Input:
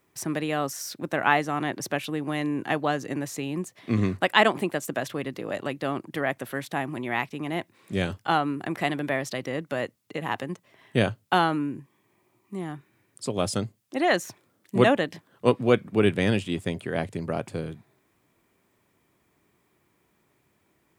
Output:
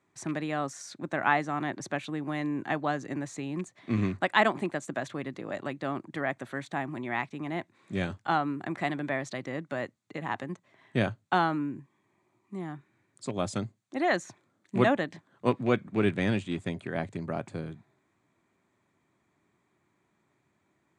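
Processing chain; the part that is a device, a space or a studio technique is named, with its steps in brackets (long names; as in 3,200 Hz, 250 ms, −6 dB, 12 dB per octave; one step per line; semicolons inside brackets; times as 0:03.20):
car door speaker with a rattle (loose part that buzzes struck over −27 dBFS, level −28 dBFS; loudspeaker in its box 83–7,600 Hz, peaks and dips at 470 Hz −6 dB, 2,900 Hz −7 dB, 5,200 Hz −9 dB)
level −3 dB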